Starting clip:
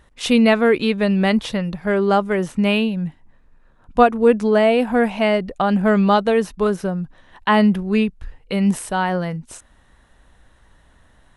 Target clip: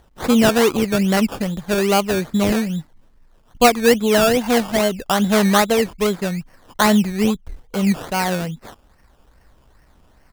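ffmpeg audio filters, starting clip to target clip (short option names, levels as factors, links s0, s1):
-af "acrusher=samples=17:mix=1:aa=0.000001:lfo=1:lforange=10.2:lforate=2.2,atempo=1.1"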